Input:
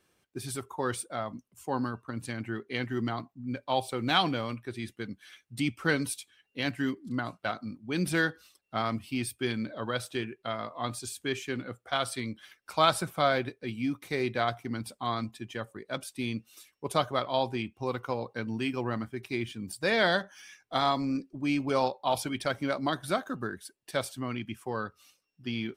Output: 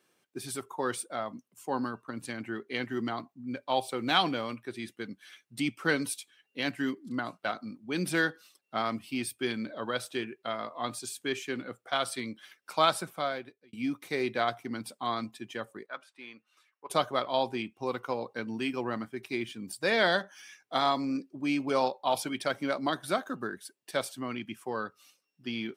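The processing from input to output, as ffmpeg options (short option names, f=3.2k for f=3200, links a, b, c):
-filter_complex "[0:a]asettb=1/sr,asplit=3[a][b][c];[a]atrim=end=15.864[d];[b]atrim=start=15.86:end=16.9,asetpts=PTS-STARTPTS,afade=t=in:d=0.004:c=qsin,afade=t=out:st=1.036:d=0.004:c=qsin,bandpass=f=1.3k:t=q:w=1.6[e];[c]atrim=start=16.896[f];[d][e]acrossfade=d=0.004:c1=hsin:c2=qsin[g];[g][f]acrossfade=d=0.004:c1=qsin:c2=hsin,asplit=2[h][i];[h]atrim=end=13.73,asetpts=PTS-STARTPTS,afade=t=out:st=12.75:d=0.98[j];[i]atrim=start=13.73,asetpts=PTS-STARTPTS,afade=t=in:d=0.004:c=hsin[k];[j][k]concat=n=2:v=0:a=1,highpass=190"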